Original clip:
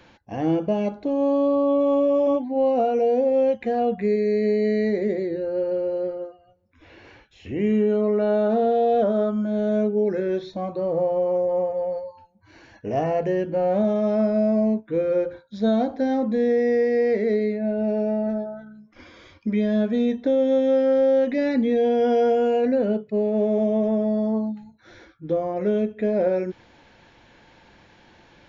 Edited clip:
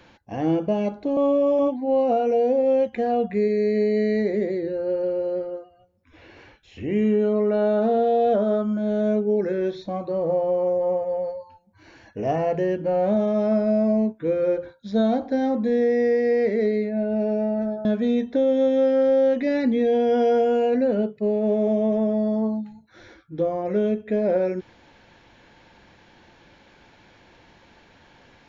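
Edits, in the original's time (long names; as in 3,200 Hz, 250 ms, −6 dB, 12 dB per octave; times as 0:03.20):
0:01.17–0:01.85: remove
0:18.53–0:19.76: remove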